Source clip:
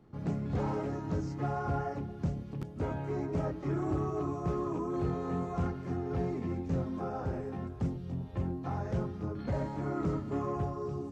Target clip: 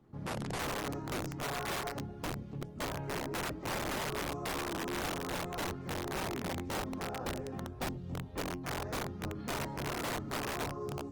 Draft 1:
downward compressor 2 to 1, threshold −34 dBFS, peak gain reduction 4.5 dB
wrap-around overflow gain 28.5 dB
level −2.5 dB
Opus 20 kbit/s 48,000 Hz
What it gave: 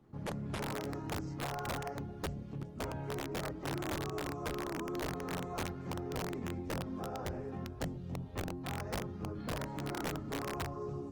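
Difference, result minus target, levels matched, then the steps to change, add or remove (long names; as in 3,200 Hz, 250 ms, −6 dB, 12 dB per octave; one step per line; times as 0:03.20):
downward compressor: peak gain reduction +4.5 dB
remove: downward compressor 2 to 1, threshold −34 dBFS, peak gain reduction 4.5 dB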